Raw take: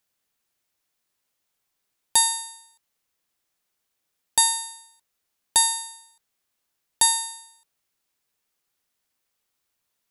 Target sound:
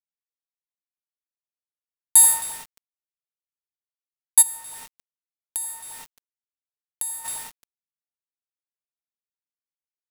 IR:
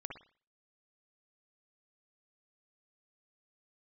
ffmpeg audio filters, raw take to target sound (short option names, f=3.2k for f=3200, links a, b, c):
-filter_complex "[0:a]adynamicsmooth=sensitivity=7:basefreq=2k,aexciter=amount=15.3:drive=4.4:freq=8.2k[a];[1:a]atrim=start_sample=2205,asetrate=29106,aresample=44100[b];[a][b]afir=irnorm=-1:irlink=0,alimiter=limit=-0.5dB:level=0:latency=1:release=159,equalizer=f=200:t=o:w=0.88:g=-15,asplit=2[c][d];[d]adelay=266,lowpass=f=2.3k:p=1,volume=-8.5dB,asplit=2[e][f];[f]adelay=266,lowpass=f=2.3k:p=1,volume=0.48,asplit=2[g][h];[h]adelay=266,lowpass=f=2.3k:p=1,volume=0.48,asplit=2[i][j];[j]adelay=266,lowpass=f=2.3k:p=1,volume=0.48,asplit=2[k][l];[l]adelay=266,lowpass=f=2.3k:p=1,volume=0.48[m];[c][e][g][i][k][m]amix=inputs=6:normalize=0,acrusher=bits=5:mix=0:aa=0.000001,asplit=3[n][o][p];[n]afade=t=out:st=4.41:d=0.02[q];[o]acompressor=threshold=-30dB:ratio=4,afade=t=in:st=4.41:d=0.02,afade=t=out:st=7.24:d=0.02[r];[p]afade=t=in:st=7.24:d=0.02[s];[q][r][s]amix=inputs=3:normalize=0,volume=-1dB"